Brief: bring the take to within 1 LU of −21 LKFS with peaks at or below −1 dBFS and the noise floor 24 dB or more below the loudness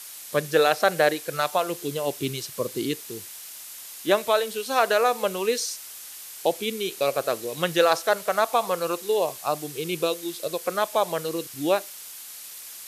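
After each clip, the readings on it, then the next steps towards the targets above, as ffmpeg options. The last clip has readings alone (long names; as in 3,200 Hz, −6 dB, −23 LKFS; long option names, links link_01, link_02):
background noise floor −41 dBFS; target noise floor −49 dBFS; integrated loudness −25.0 LKFS; sample peak −6.0 dBFS; target loudness −21.0 LKFS
→ -af "afftdn=noise_reduction=8:noise_floor=-41"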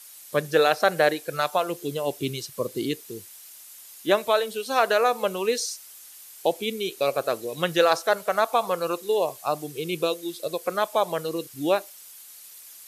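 background noise floor −46 dBFS; target noise floor −50 dBFS
→ -af "afftdn=noise_reduction=6:noise_floor=-46"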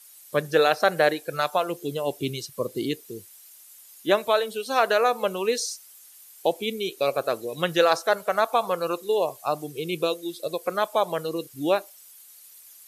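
background noise floor −50 dBFS; integrated loudness −25.5 LKFS; sample peak −6.0 dBFS; target loudness −21.0 LKFS
→ -af "volume=4.5dB"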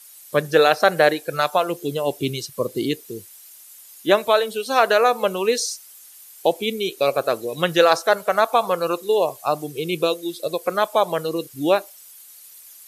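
integrated loudness −21.0 LKFS; sample peak −1.5 dBFS; background noise floor −45 dBFS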